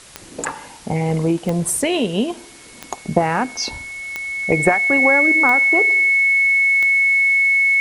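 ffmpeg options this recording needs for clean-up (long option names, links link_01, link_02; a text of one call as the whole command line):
ffmpeg -i in.wav -af "adeclick=threshold=4,bandreject=frequency=2200:width=30,afwtdn=0.0089" out.wav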